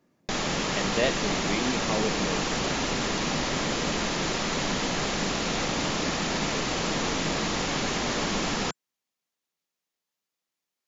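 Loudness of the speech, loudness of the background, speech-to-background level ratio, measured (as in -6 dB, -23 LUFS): -32.0 LUFS, -27.5 LUFS, -4.5 dB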